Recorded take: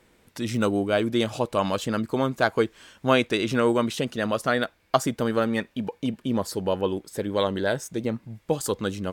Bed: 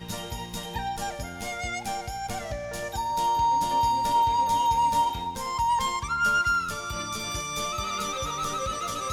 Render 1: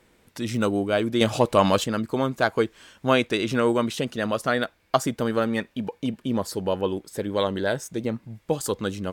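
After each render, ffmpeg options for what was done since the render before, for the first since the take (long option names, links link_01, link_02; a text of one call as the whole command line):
ffmpeg -i in.wav -filter_complex "[0:a]asettb=1/sr,asplit=3[link_01][link_02][link_03];[link_01]atrim=end=1.214[link_04];[link_02]atrim=start=1.21:end=1.84,asetpts=PTS-STARTPTS,afade=type=in:duration=0.004:curve=qsin,afade=type=out:start_time=0.626:duration=0.004:curve=qsin,acontrast=54[link_05];[link_03]atrim=start=1.836[link_06];[link_04][link_05]acrossfade=duration=0.004:curve1=hsin:curve2=qsin[link_07];[link_07][link_06]acrossfade=duration=0.004:curve1=qsin:curve2=hsin" out.wav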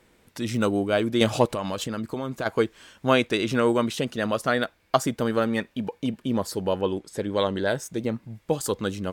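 ffmpeg -i in.wav -filter_complex "[0:a]asplit=3[link_01][link_02][link_03];[link_01]afade=type=out:start_time=1.46:duration=0.02[link_04];[link_02]acompressor=threshold=-25dB:ratio=6:attack=3.2:release=140:knee=1:detection=peak,afade=type=in:start_time=1.46:duration=0.02,afade=type=out:start_time=2.45:duration=0.02[link_05];[link_03]afade=type=in:start_time=2.45:duration=0.02[link_06];[link_04][link_05][link_06]amix=inputs=3:normalize=0,asettb=1/sr,asplit=3[link_07][link_08][link_09];[link_07]atrim=end=6.784[link_10];[link_08]atrim=start=6.78:end=7.68,asetpts=PTS-STARTPTS,afade=type=in:duration=0.004:curve=qsin,afade=type=out:start_time=0.896:duration=0.004:curve=qsin,lowpass=9900[link_11];[link_09]atrim=start=7.676[link_12];[link_10][link_11]acrossfade=duration=0.004:curve1=hsin:curve2=qsin[link_13];[link_13][link_12]acrossfade=duration=0.004:curve1=qsin:curve2=hsin" out.wav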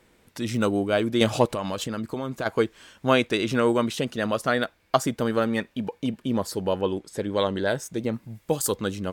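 ffmpeg -i in.wav -filter_complex "[0:a]asettb=1/sr,asplit=3[link_01][link_02][link_03];[link_01]atrim=end=8.134[link_04];[link_02]atrim=start=8.13:end=8.76,asetpts=PTS-STARTPTS,afade=type=in:duration=0.004:curve=qsin,afade=type=out:start_time=0.626:duration=0.004:curve=qsin,highshelf=frequency=7800:gain=10[link_05];[link_03]atrim=start=8.756[link_06];[link_04][link_05]acrossfade=duration=0.004:curve1=hsin:curve2=qsin[link_07];[link_07][link_06]acrossfade=duration=0.004:curve1=qsin:curve2=hsin" out.wav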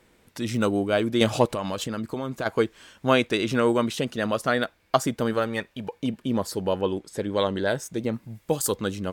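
ffmpeg -i in.wav -filter_complex "[0:a]asettb=1/sr,asplit=3[link_01][link_02][link_03];[link_01]atrim=end=5.334[link_04];[link_02]atrim=start=5.33:end=5.96,asetpts=PTS-STARTPTS,afade=type=in:duration=0.004:curve=qsin,afade=type=out:start_time=0.626:duration=0.004:curve=qsin,equalizer=frequency=240:width=1.5:gain=-7[link_05];[link_03]atrim=start=5.956[link_06];[link_04][link_05]acrossfade=duration=0.004:curve1=hsin:curve2=qsin[link_07];[link_07][link_06]acrossfade=duration=0.004:curve1=qsin:curve2=hsin" out.wav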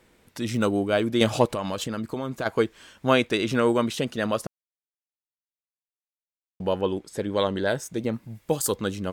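ffmpeg -i in.wav -filter_complex "[0:a]asplit=3[link_01][link_02][link_03];[link_01]atrim=end=4.47,asetpts=PTS-STARTPTS,afade=type=out:start_time=4.466:duration=0.004:curve=hsin[link_04];[link_02]atrim=start=4.47:end=6.6,asetpts=PTS-STARTPTS,volume=0[link_05];[link_03]atrim=start=6.6,asetpts=PTS-STARTPTS,afade=type=in:duration=0.004:curve=hsin[link_06];[link_04][link_05][link_06]concat=n=3:v=0:a=1" out.wav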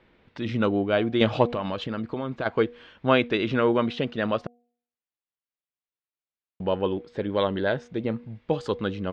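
ffmpeg -i in.wav -af "lowpass=frequency=3700:width=0.5412,lowpass=frequency=3700:width=1.3066,bandreject=frequency=240.1:width_type=h:width=4,bandreject=frequency=480.2:width_type=h:width=4,bandreject=frequency=720.3:width_type=h:width=4" out.wav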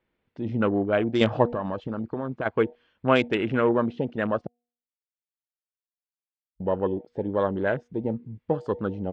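ffmpeg -i in.wav -af "afwtdn=0.0224,bandreject=frequency=3800:width=19" out.wav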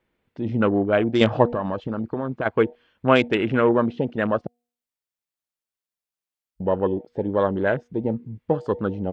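ffmpeg -i in.wav -af "volume=3.5dB" out.wav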